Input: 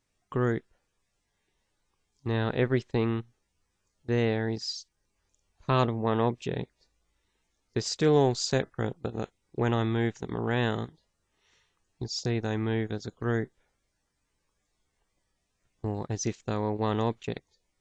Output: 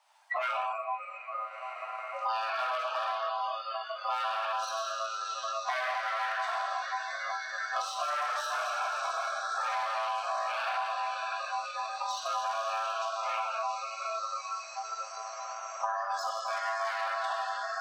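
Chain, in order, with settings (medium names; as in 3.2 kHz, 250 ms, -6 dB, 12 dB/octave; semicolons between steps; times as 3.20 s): echo that smears into a reverb 613 ms, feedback 66%, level -12 dB; in parallel at -1 dB: compression 8:1, threshold -40 dBFS, peak gain reduction 21.5 dB; on the sum: reverberation RT60 2.1 s, pre-delay 4 ms, DRR -5 dB; overload inside the chain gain 21.5 dB; ring modulator 890 Hz; spectral noise reduction 21 dB; Chebyshev high-pass 610 Hz, order 6; treble shelf 5.1 kHz -5 dB; band-stop 7 kHz, Q 11; three bands compressed up and down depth 100%; trim -1.5 dB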